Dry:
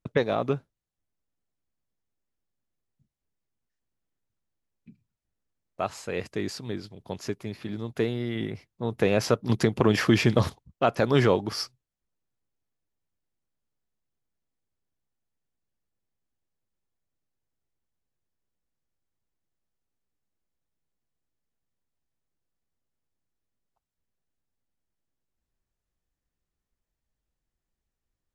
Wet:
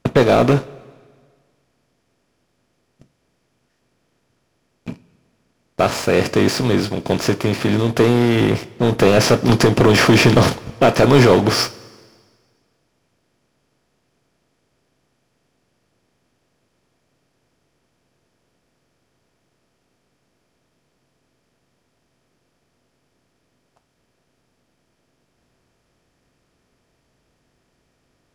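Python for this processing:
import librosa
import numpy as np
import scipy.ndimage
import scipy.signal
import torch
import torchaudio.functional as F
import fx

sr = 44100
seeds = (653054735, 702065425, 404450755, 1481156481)

y = fx.bin_compress(x, sr, power=0.6)
y = fx.leveller(y, sr, passes=3)
y = fx.rev_double_slope(y, sr, seeds[0], early_s=0.23, late_s=1.7, knee_db=-18, drr_db=9.5)
y = F.gain(torch.from_numpy(y), -1.0).numpy()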